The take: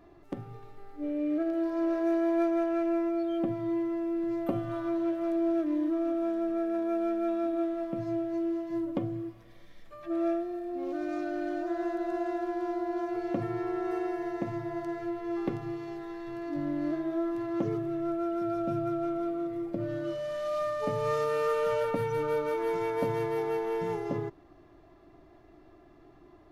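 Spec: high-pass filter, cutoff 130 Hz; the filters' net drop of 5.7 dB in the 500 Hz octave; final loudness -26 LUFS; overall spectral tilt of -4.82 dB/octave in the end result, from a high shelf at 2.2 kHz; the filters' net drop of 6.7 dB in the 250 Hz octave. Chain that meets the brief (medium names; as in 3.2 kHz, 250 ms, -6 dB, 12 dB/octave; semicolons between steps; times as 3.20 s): high-pass 130 Hz; peaking EQ 250 Hz -7 dB; peaking EQ 500 Hz -6 dB; treble shelf 2.2 kHz +4 dB; trim +10.5 dB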